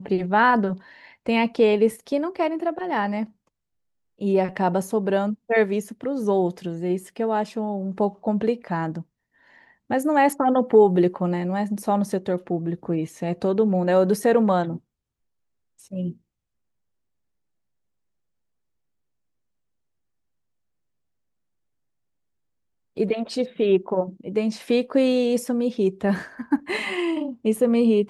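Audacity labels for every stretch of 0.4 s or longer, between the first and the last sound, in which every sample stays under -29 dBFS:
0.750000	1.260000	silence
3.240000	4.210000	silence
9.010000	9.900000	silence
14.760000	15.930000	silence
16.100000	22.980000	silence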